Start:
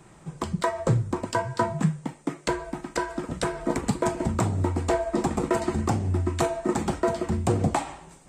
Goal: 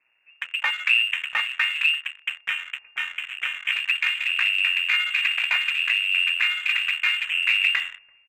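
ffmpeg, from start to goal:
-filter_complex "[0:a]aeval=exprs='max(val(0),0)':c=same,asplit=2[s0][s1];[s1]aecho=0:1:339|678|1017|1356:0.0944|0.0519|0.0286|0.0157[s2];[s0][s2]amix=inputs=2:normalize=0,lowpass=f=2400:t=q:w=0.5098,lowpass=f=2400:t=q:w=0.6013,lowpass=f=2400:t=q:w=0.9,lowpass=f=2400:t=q:w=2.563,afreqshift=-2800,afwtdn=0.0251,asplit=2[s3][s4];[s4]aeval=exprs='sgn(val(0))*max(abs(val(0))-0.0112,0)':c=same,volume=0.398[s5];[s3][s5]amix=inputs=2:normalize=0,asubboost=boost=2.5:cutoff=160,volume=1.41"

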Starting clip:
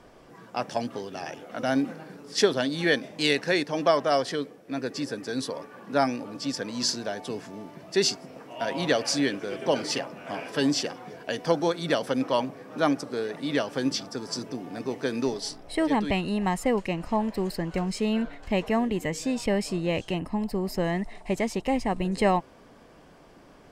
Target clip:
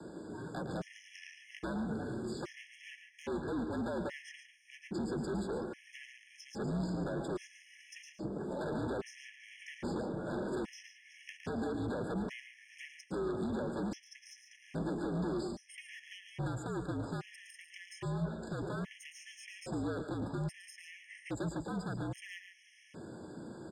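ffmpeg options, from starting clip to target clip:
-filter_complex "[0:a]acrossover=split=1500[s0][s1];[s1]acompressor=threshold=0.00398:ratio=6[s2];[s0][s2]amix=inputs=2:normalize=0,alimiter=limit=0.119:level=0:latency=1,acrossover=split=250|590|1300[s3][s4][s5][s6];[s3]acompressor=threshold=0.0112:ratio=4[s7];[s4]acompressor=threshold=0.0112:ratio=4[s8];[s5]acompressor=threshold=0.01:ratio=4[s9];[s6]acompressor=threshold=0.00316:ratio=4[s10];[s7][s8][s9][s10]amix=inputs=4:normalize=0,aeval=exprs='0.0224*(abs(mod(val(0)/0.0224+3,4)-2)-1)':c=same,highpass=f=160:w=0.5412,highpass=f=160:w=1.3066,equalizer=f=230:t=q:w=4:g=5,equalizer=f=390:t=q:w=4:g=8,equalizer=f=740:t=q:w=4:g=-5,equalizer=f=1200:t=q:w=4:g=-9,equalizer=f=4100:t=q:w=4:g=-6,equalizer=f=8300:t=q:w=4:g=6,lowpass=f=9700:w=0.5412,lowpass=f=9700:w=1.3066,aeval=exprs='(tanh(70.8*val(0)+0.2)-tanh(0.2))/70.8':c=same,afreqshift=-60,aecho=1:1:110.8|142.9:0.316|0.282,afftfilt=real='re*gt(sin(2*PI*0.61*pts/sr)*(1-2*mod(floor(b*sr/1024/1700),2)),0)':imag='im*gt(sin(2*PI*0.61*pts/sr)*(1-2*mod(floor(b*sr/1024/1700),2)),0)':win_size=1024:overlap=0.75,volume=1.68"

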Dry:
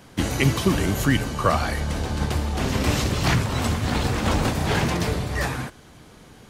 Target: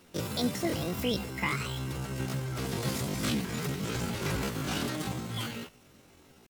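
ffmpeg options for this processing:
-af "equalizer=f=430:w=0.92:g=-4,bandreject=f=1000:w=17,asetrate=78577,aresample=44100,atempo=0.561231,volume=0.355"

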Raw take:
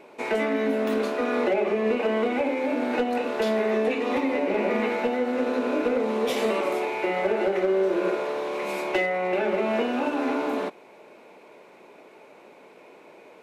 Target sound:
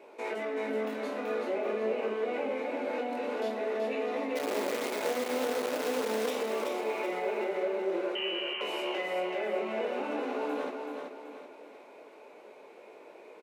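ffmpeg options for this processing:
-filter_complex "[0:a]alimiter=limit=0.0708:level=0:latency=1:release=42,flanger=delay=17.5:depth=6.2:speed=0.47,asplit=3[s0][s1][s2];[s0]afade=t=out:st=4.35:d=0.02[s3];[s1]acrusher=bits=6:dc=4:mix=0:aa=0.000001,afade=t=in:st=4.35:d=0.02,afade=t=out:st=6.29:d=0.02[s4];[s2]afade=t=in:st=6.29:d=0.02[s5];[s3][s4][s5]amix=inputs=3:normalize=0,asettb=1/sr,asplit=3[s6][s7][s8];[s6]atrim=end=8.154[s9];[s7]atrim=start=8.15:end=8.61,asetpts=PTS-STARTPTS,afade=t=in:d=0.004:c=qsin,afade=t=out:st=0.456:d=0.004:c=qsin,lowpass=f=2900:t=q:w=0.5098,lowpass=f=2900:t=q:w=0.6013,lowpass=f=2900:t=q:w=0.9,lowpass=f=2900:t=q:w=2.563,afreqshift=-3400[s10];[s8]atrim=start=8.606[s11];[s9][s10]acrossfade=d=0.004:c1=hsin:c2=qsin[s12];[s12][s11]acrossfade=d=0.004:c1=qsin:c2=hsin,highpass=270,equalizer=f=470:w=1.1:g=4,asplit=2[s13][s14];[s14]aecho=0:1:380|760|1140|1520|1900:0.562|0.231|0.0945|0.0388|0.0159[s15];[s13][s15]amix=inputs=2:normalize=0,volume=0.75"

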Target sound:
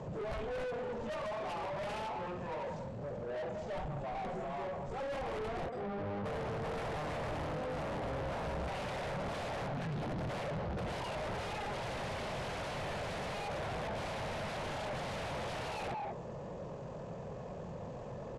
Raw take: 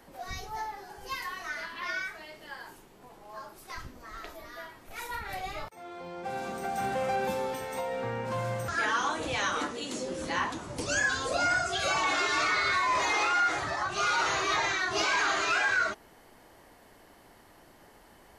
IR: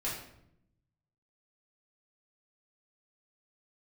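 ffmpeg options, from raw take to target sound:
-filter_complex "[0:a]acompressor=threshold=0.0355:ratio=4,asplit=2[s0][s1];[s1]adelay=190,highpass=300,lowpass=3400,asoftclip=type=hard:threshold=0.0299,volume=0.224[s2];[s0][s2]amix=inputs=2:normalize=0,acrossover=split=4700[s3][s4];[s4]acompressor=threshold=0.002:ratio=4:attack=1:release=60[s5];[s3][s5]amix=inputs=2:normalize=0,aeval=exprs='(mod(31.6*val(0)+1,2)-1)/31.6':c=same,firequalizer=gain_entry='entry(230,0);entry(510,-20);entry(960,-10);entry(2100,-25)':delay=0.05:min_phase=1,asetrate=25476,aresample=44100,atempo=1.73107,asplit=2[s6][s7];[s7]highpass=f=720:p=1,volume=79.4,asoftclip=type=tanh:threshold=0.0211[s8];[s6][s8]amix=inputs=2:normalize=0,lowpass=f=1700:p=1,volume=0.501,lowpass=f=11000:w=0.5412,lowpass=f=11000:w=1.3066,volume=1.33"

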